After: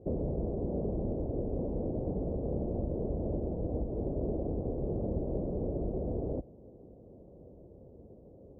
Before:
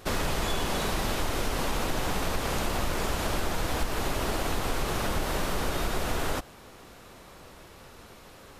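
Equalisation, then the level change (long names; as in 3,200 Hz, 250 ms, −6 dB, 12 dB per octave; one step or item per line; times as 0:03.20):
high-pass filter 46 Hz
Butterworth low-pass 580 Hz 36 dB per octave
0.0 dB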